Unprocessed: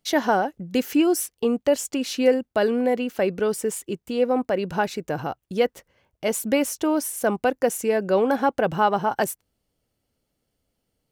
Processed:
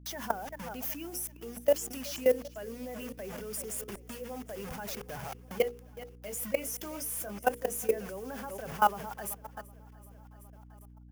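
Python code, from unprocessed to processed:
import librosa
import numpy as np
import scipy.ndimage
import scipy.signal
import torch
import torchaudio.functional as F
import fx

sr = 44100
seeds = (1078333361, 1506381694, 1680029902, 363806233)

y = fx.bin_expand(x, sr, power=1.5)
y = fx.doubler(y, sr, ms=20.0, db=-6.0, at=(5.62, 7.91))
y = fx.transient(y, sr, attack_db=-1, sustain_db=6)
y = fx.quant_dither(y, sr, seeds[0], bits=6, dither='none')
y = fx.graphic_eq_31(y, sr, hz=(160, 315, 4000, 8000), db=(-10, -8, -10, -5))
y = fx.echo_feedback(y, sr, ms=380, feedback_pct=56, wet_db=-17.0)
y = fx.level_steps(y, sr, step_db=20)
y = fx.high_shelf(y, sr, hz=11000.0, db=7.5)
y = fx.hum_notches(y, sr, base_hz=60, count=8)
y = fx.add_hum(y, sr, base_hz=60, snr_db=17)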